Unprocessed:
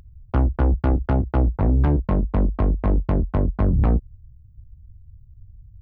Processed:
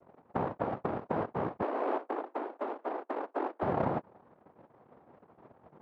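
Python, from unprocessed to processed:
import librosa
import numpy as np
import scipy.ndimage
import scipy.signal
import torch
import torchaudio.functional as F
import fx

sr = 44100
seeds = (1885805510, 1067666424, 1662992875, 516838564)

y = scipy.signal.sosfilt(scipy.signal.cheby2(4, 70, [520.0, 2300.0], 'bandstop', fs=sr, output='sos'), x)
y = fx.noise_vocoder(y, sr, seeds[0], bands=2)
y = fx.steep_highpass(y, sr, hz=270.0, slope=48, at=(1.62, 3.63))
y = F.gain(torch.from_numpy(y), -5.0).numpy()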